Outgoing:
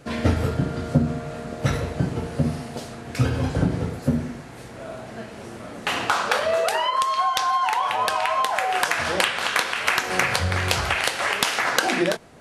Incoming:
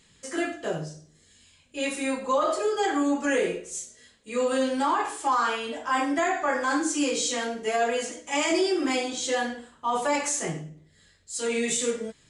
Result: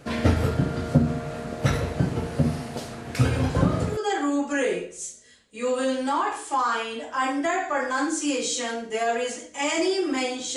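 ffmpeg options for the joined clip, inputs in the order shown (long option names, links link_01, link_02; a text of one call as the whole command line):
ffmpeg -i cue0.wav -i cue1.wav -filter_complex "[1:a]asplit=2[link_01][link_02];[0:a]apad=whole_dur=10.56,atrim=end=10.56,atrim=end=3.972[link_03];[link_02]atrim=start=2.698:end=9.29[link_04];[link_01]atrim=start=1.91:end=2.7,asetpts=PTS-STARTPTS,volume=-8dB,afade=type=in:duration=0.004:curve=hsin,afade=type=out:start_time=0.786:duration=0.004:curve=hsin,adelay=3180[link_05];[link_03][link_04]acrossfade=duration=0.004:curve1=hsin:curve2=hsin[link_06];[link_06][link_05]amix=inputs=2:normalize=0" out.wav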